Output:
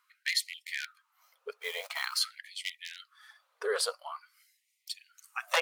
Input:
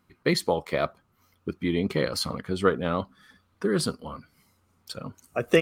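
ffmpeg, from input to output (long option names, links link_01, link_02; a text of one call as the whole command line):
ffmpeg -i in.wav -filter_complex "[0:a]aeval=exprs='0.2*(abs(mod(val(0)/0.2+3,4)-2)-1)':channel_layout=same,asettb=1/sr,asplit=3[link_01][link_02][link_03];[link_01]atrim=end=1.574[link_04];[link_02]atrim=start=1.57:end=2.19,asetpts=PTS-STARTPTS,afade=type=in:duration=0.004:curve=qsin,afade=type=out:start_time=0.616:duration=0.004:curve=qsin,acrusher=bits=6:mode=log:mix=0:aa=0.000001[link_05];[link_03]atrim=start=2.186[link_06];[link_04][link_05]acrossfade=duration=0.004:curve1=hsin:curve2=qsin[link_07];[link_07][link_06]acrossfade=duration=0.004:curve1=qsin:curve2=hsin,afftfilt=real='re*gte(b*sr/1024,410*pow(1900/410,0.5+0.5*sin(2*PI*0.47*pts/sr)))':imag='im*gte(b*sr/1024,410*pow(1900/410,0.5+0.5*sin(2*PI*0.47*pts/sr)))':win_size=1024:overlap=0.75" out.wav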